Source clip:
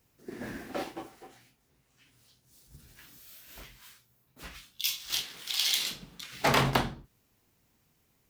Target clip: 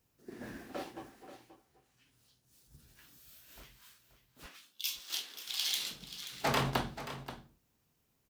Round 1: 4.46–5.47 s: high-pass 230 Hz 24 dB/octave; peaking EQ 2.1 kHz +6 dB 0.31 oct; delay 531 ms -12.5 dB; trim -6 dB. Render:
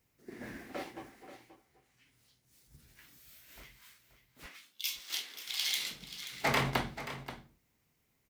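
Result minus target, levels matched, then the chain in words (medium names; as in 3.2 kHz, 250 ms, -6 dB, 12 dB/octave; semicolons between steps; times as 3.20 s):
2 kHz band +3.5 dB
4.46–5.47 s: high-pass 230 Hz 24 dB/octave; peaking EQ 2.1 kHz -3 dB 0.31 oct; delay 531 ms -12.5 dB; trim -6 dB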